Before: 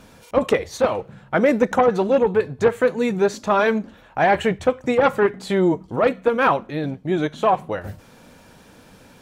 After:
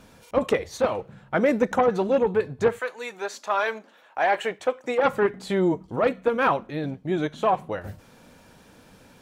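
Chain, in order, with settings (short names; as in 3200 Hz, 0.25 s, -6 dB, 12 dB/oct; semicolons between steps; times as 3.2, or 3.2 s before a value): 2.78–5.03 HPF 900 Hz -> 350 Hz 12 dB/oct; gain -4 dB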